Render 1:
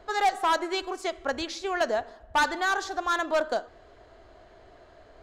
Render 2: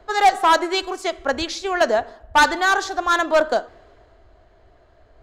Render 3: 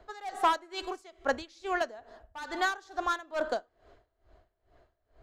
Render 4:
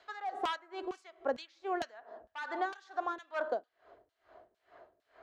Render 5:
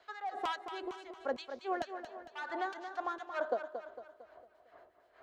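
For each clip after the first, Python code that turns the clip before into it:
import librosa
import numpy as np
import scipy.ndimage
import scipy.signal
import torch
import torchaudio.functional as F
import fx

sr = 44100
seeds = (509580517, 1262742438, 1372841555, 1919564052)

y1 = fx.band_widen(x, sr, depth_pct=40)
y1 = F.gain(torch.from_numpy(y1), 8.0).numpy()
y2 = y1 * 10.0 ** (-22 * (0.5 - 0.5 * np.cos(2.0 * np.pi * 2.3 * np.arange(len(y1)) / sr)) / 20.0)
y2 = F.gain(torch.from_numpy(y2), -6.5).numpy()
y3 = fx.filter_lfo_bandpass(y2, sr, shape='saw_down', hz=2.2, low_hz=300.0, high_hz=4200.0, q=0.97)
y3 = fx.band_squash(y3, sr, depth_pct=40)
y4 = fx.harmonic_tremolo(y3, sr, hz=8.2, depth_pct=50, crossover_hz=1300.0)
y4 = fx.echo_feedback(y4, sr, ms=227, feedback_pct=47, wet_db=-9.0)
y4 = F.gain(torch.from_numpy(y4), 1.0).numpy()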